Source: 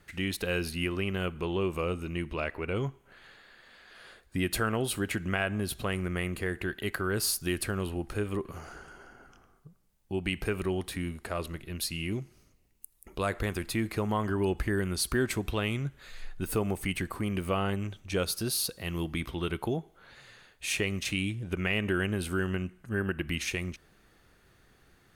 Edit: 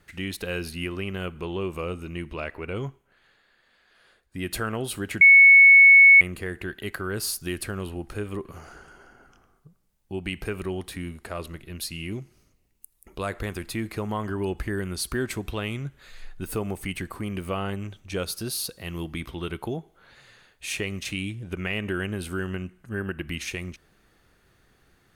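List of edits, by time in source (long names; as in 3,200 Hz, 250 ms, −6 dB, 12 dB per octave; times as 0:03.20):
0:02.89–0:04.49: duck −8 dB, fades 0.19 s
0:05.21–0:06.21: beep over 2,210 Hz −8.5 dBFS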